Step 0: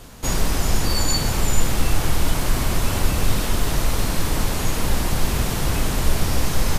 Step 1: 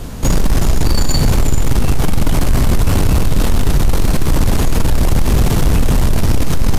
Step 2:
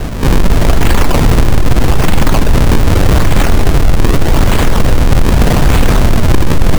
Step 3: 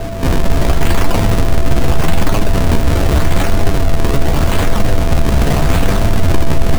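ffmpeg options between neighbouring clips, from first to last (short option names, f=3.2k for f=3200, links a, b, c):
-filter_complex "[0:a]asplit=2[a][b];[b]alimiter=limit=-14.5dB:level=0:latency=1,volume=2dB[c];[a][c]amix=inputs=2:normalize=0,lowshelf=f=490:g=9.5,acontrast=72,volume=-6dB"
-filter_complex "[0:a]asplit=2[a][b];[b]aeval=exprs='(mod(4.47*val(0)+1,2)-1)/4.47':c=same,volume=-3dB[c];[a][c]amix=inputs=2:normalize=0,acrusher=samples=37:mix=1:aa=0.000001:lfo=1:lforange=59.2:lforate=0.82,volume=4dB"
-af "flanger=delay=9.7:depth=4.7:regen=39:speed=0.83:shape=sinusoidal,aeval=exprs='val(0)+0.0501*sin(2*PI*670*n/s)':c=same"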